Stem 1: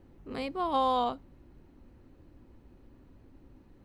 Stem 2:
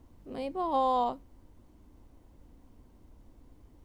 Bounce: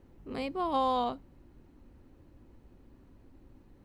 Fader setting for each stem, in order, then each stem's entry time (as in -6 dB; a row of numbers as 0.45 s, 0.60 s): -1.5 dB, -10.0 dB; 0.00 s, 0.00 s